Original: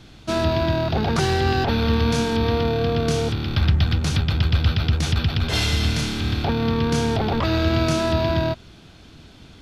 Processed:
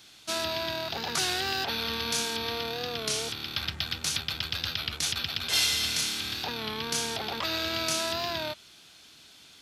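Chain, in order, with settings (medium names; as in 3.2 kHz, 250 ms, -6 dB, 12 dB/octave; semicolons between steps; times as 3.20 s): tilt EQ +4.5 dB/octave; warped record 33 1/3 rpm, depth 100 cents; trim -8.5 dB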